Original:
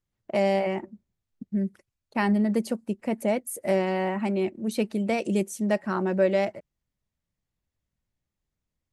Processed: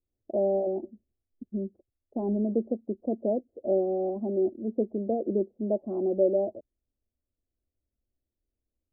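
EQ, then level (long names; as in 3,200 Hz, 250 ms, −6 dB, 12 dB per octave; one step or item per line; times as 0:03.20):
Chebyshev low-pass with heavy ripple 1,000 Hz, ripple 3 dB
phaser with its sweep stopped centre 390 Hz, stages 4
+3.5 dB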